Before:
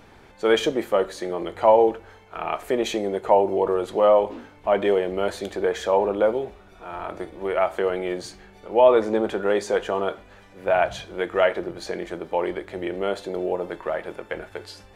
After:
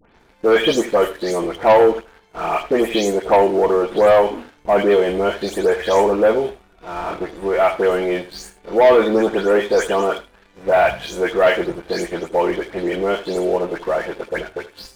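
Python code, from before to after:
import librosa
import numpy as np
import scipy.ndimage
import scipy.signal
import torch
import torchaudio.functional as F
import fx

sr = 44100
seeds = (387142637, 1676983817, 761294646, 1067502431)

y = fx.spec_delay(x, sr, highs='late', ms=199)
y = fx.leveller(y, sr, passes=2)
y = y + 10.0 ** (-16.0 / 20.0) * np.pad(y, (int(79 * sr / 1000.0), 0))[:len(y)]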